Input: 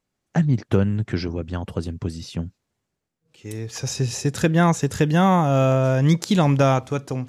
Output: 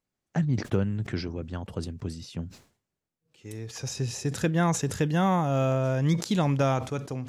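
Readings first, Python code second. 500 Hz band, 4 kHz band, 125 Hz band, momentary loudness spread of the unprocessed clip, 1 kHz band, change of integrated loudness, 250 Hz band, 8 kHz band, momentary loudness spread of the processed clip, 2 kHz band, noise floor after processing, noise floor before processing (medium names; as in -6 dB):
-7.0 dB, -6.0 dB, -6.5 dB, 14 LU, -7.0 dB, -7.0 dB, -7.0 dB, -4.5 dB, 13 LU, -6.5 dB, under -85 dBFS, -80 dBFS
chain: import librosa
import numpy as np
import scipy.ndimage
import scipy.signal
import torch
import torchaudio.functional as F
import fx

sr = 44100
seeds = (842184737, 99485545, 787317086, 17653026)

y = fx.sustainer(x, sr, db_per_s=130.0)
y = y * librosa.db_to_amplitude(-7.0)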